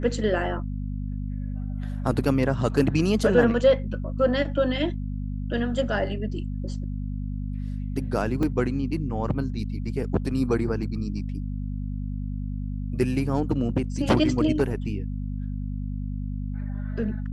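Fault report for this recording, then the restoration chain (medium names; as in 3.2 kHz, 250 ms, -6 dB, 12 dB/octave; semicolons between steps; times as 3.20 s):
hum 50 Hz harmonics 5 -30 dBFS
8.43 s: dropout 3 ms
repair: de-hum 50 Hz, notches 5; interpolate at 8.43 s, 3 ms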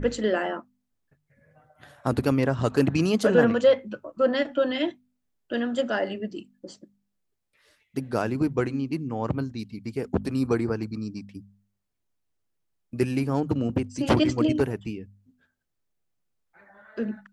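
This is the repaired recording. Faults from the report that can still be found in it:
nothing left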